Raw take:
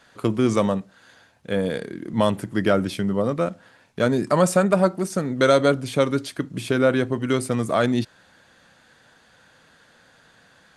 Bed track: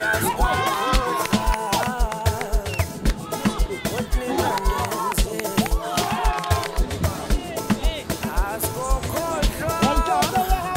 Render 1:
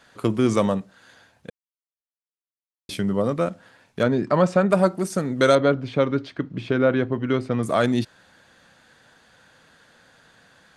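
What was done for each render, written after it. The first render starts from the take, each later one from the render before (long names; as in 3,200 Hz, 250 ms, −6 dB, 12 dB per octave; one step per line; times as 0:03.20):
0:01.50–0:02.89: silence
0:04.03–0:04.70: high-frequency loss of the air 160 metres
0:05.55–0:07.63: high-frequency loss of the air 220 metres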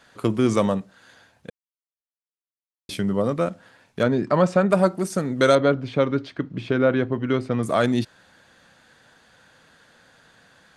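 no processing that can be heard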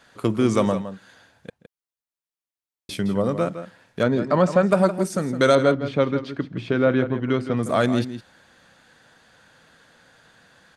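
slap from a distant wall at 28 metres, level −11 dB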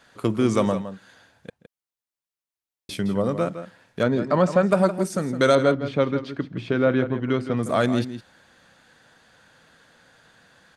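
level −1 dB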